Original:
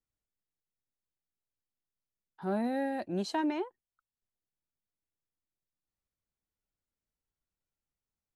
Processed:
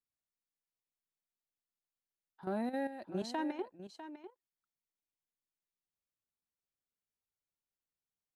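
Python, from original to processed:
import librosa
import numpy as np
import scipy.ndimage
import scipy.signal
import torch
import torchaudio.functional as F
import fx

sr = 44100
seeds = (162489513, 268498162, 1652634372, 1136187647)

p1 = fx.low_shelf(x, sr, hz=75.0, db=-11.0)
p2 = fx.level_steps(p1, sr, step_db=11)
p3 = p2 + fx.echo_single(p2, sr, ms=650, db=-12.0, dry=0)
y = F.gain(torch.from_numpy(p3), -2.0).numpy()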